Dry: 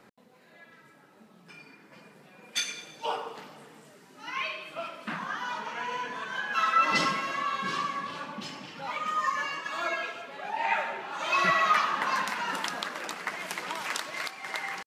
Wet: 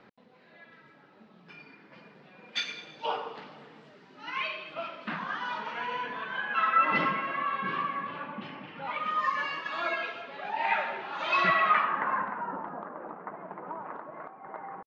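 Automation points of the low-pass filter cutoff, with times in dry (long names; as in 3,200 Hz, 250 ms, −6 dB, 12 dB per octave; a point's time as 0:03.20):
low-pass filter 24 dB per octave
0:05.73 4,400 Hz
0:06.78 2,700 Hz
0:08.70 2,700 Hz
0:09.26 4,400 Hz
0:11.38 4,400 Hz
0:12.03 1,900 Hz
0:12.55 1,100 Hz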